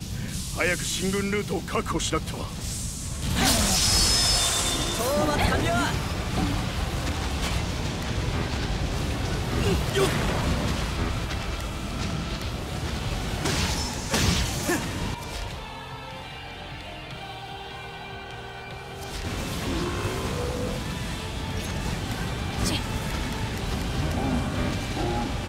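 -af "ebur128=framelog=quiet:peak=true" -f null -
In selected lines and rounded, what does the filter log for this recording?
Integrated loudness:
  I:         -26.7 LUFS
  Threshold: -37.0 LUFS
Loudness range:
  LRA:        11.2 LU
  Threshold: -46.9 LUFS
  LRA low:   -33.4 LUFS
  LRA high:  -22.2 LUFS
True peak:
  Peak:       -7.9 dBFS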